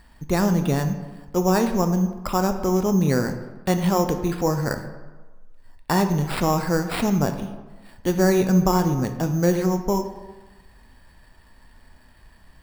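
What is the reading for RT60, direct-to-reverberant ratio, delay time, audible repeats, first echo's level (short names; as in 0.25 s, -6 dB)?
1.3 s, 6.5 dB, none, none, none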